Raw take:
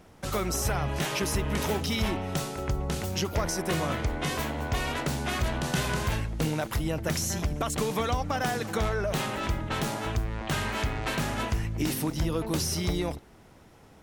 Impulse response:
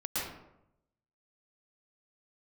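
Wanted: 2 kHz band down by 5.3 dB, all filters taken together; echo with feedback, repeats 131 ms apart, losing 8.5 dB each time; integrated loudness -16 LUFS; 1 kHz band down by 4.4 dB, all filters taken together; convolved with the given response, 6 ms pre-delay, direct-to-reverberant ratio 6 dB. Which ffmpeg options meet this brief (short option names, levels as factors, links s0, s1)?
-filter_complex "[0:a]equalizer=f=1000:t=o:g=-4.5,equalizer=f=2000:t=o:g=-5.5,aecho=1:1:131|262|393|524:0.376|0.143|0.0543|0.0206,asplit=2[s0][s1];[1:a]atrim=start_sample=2205,adelay=6[s2];[s1][s2]afir=irnorm=-1:irlink=0,volume=0.266[s3];[s0][s3]amix=inputs=2:normalize=0,volume=4.47"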